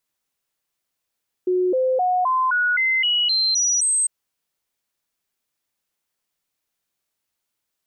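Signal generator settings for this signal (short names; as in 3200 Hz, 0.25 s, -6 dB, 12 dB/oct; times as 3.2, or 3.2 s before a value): stepped sine 365 Hz up, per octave 2, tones 10, 0.26 s, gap 0.00 s -16.5 dBFS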